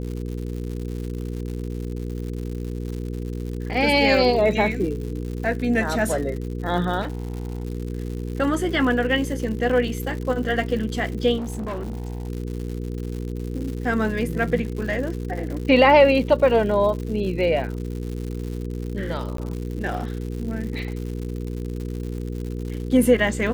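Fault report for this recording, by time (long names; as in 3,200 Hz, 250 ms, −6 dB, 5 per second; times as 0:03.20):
surface crackle 160 per second −31 dBFS
mains hum 60 Hz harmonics 8 −29 dBFS
0:07.01–0:07.65: clipping −24 dBFS
0:11.37–0:12.29: clipping −25.5 dBFS
0:19.37–0:19.38: drop-out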